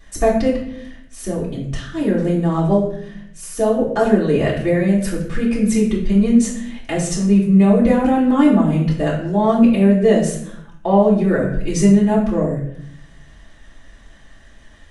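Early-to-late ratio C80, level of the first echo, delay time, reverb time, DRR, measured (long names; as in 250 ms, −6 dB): 8.0 dB, no echo audible, no echo audible, 0.65 s, −7.0 dB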